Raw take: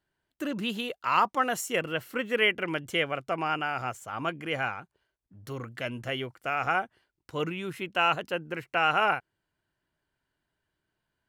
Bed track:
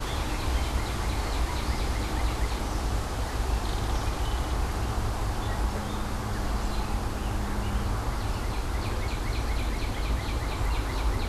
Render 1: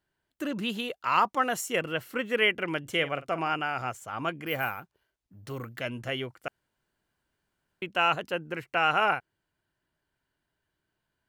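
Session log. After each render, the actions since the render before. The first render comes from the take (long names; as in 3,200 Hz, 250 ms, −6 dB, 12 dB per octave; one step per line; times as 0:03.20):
0:02.81–0:03.53: double-tracking delay 49 ms −14 dB
0:04.46–0:05.80: bad sample-rate conversion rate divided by 3×, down none, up hold
0:06.48–0:07.82: fill with room tone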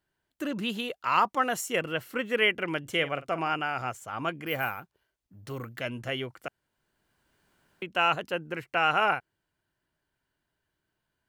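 0:06.35–0:07.92: multiband upward and downward compressor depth 40%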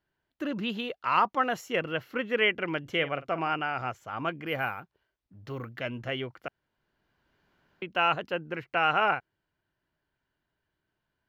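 moving average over 5 samples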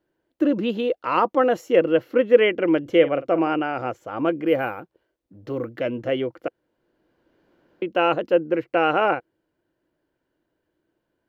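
hollow resonant body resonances 330/490 Hz, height 16 dB, ringing for 30 ms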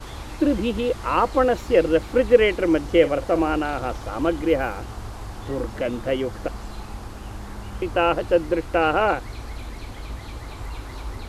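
mix in bed track −5.5 dB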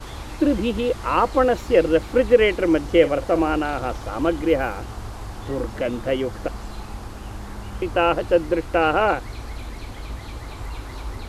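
level +1 dB
brickwall limiter −3 dBFS, peak gain reduction 2 dB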